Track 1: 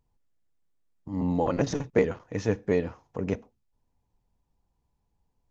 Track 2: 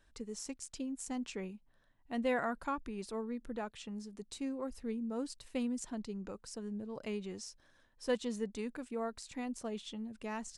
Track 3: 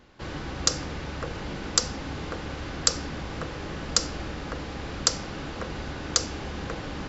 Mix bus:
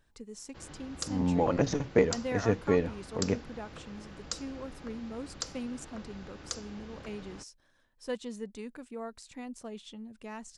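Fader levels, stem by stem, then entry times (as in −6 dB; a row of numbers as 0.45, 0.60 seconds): −1.0, −2.0, −14.0 decibels; 0.00, 0.00, 0.35 seconds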